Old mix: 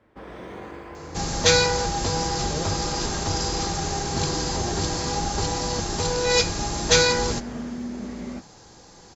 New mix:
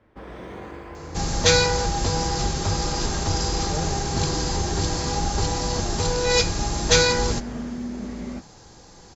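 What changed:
speech: entry +1.20 s
master: add low-shelf EQ 92 Hz +7 dB

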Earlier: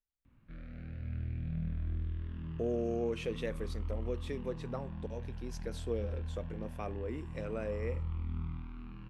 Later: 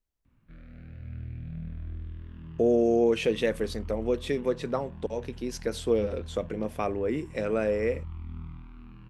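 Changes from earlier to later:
speech +12.0 dB
reverb: off

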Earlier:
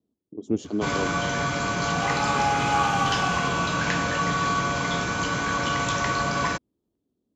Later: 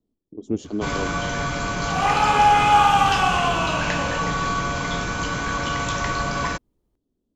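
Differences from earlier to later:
second sound +9.5 dB
master: remove high-pass filter 91 Hz 12 dB per octave

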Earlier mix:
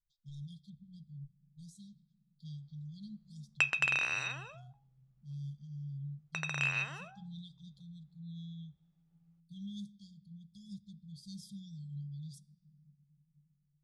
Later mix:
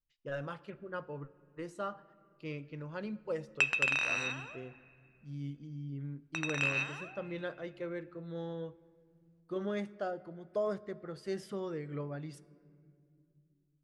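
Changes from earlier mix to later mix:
speech: remove linear-phase brick-wall band-stop 210–3,200 Hz
background: send on

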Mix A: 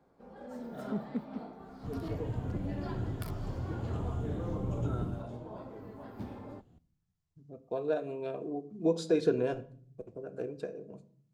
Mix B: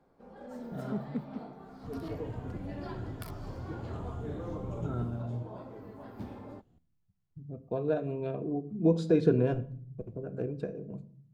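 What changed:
speech: add bass and treble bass +13 dB, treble −8 dB
second sound −4.5 dB

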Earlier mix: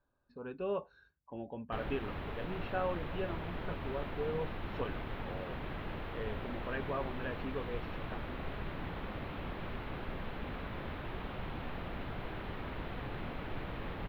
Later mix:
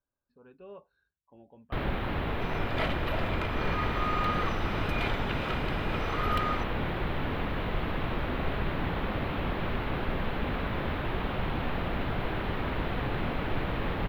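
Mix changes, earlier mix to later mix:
speech −11.5 dB
first sound +10.0 dB
second sound: unmuted

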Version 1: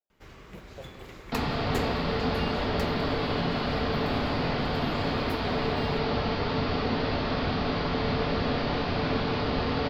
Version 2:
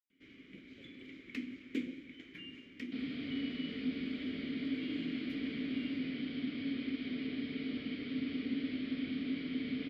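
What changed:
first sound +6.0 dB
second sound: entry +1.60 s
master: add formant filter i

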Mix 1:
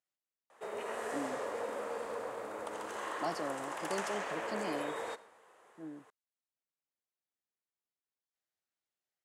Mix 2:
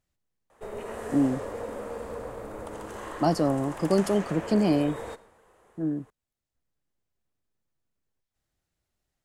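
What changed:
speech +10.5 dB
master: remove meter weighting curve A

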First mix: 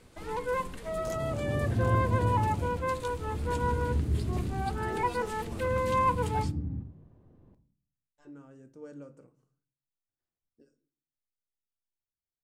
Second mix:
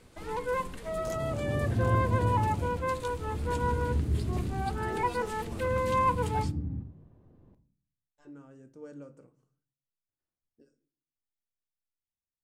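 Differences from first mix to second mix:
nothing changed

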